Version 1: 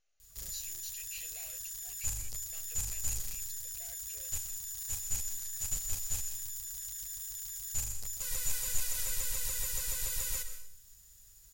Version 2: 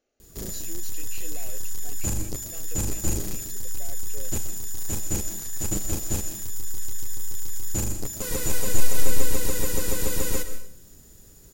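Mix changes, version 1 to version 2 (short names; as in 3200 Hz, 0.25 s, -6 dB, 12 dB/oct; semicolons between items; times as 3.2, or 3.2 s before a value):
background +4.5 dB; master: remove passive tone stack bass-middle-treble 10-0-10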